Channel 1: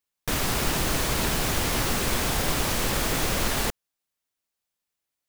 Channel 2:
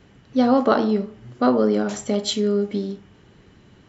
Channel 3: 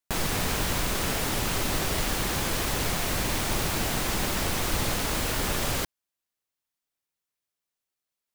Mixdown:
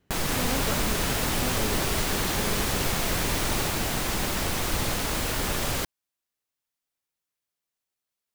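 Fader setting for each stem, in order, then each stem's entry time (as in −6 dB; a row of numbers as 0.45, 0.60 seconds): −7.0, −17.0, 0.0 decibels; 0.00, 0.00, 0.00 seconds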